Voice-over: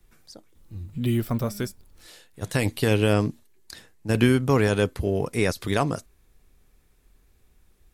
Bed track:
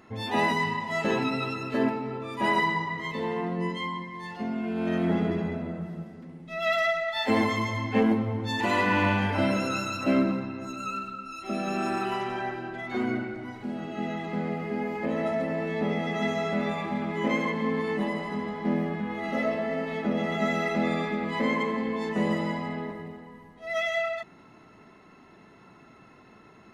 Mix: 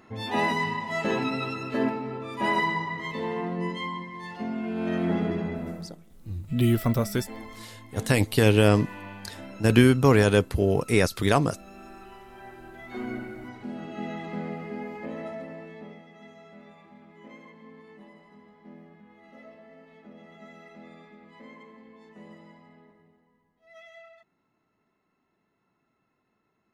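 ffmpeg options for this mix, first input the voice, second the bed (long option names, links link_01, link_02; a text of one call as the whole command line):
ffmpeg -i stem1.wav -i stem2.wav -filter_complex "[0:a]adelay=5550,volume=2dB[link_01];[1:a]volume=14.5dB,afade=type=out:start_time=5.69:duration=0.31:silence=0.141254,afade=type=in:start_time=12.28:duration=1.23:silence=0.177828,afade=type=out:start_time=14.27:duration=1.79:silence=0.112202[link_02];[link_01][link_02]amix=inputs=2:normalize=0" out.wav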